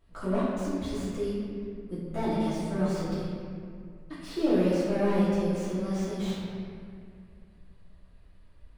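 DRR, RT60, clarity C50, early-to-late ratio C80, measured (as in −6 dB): −11.5 dB, 2.2 s, −2.5 dB, −0.5 dB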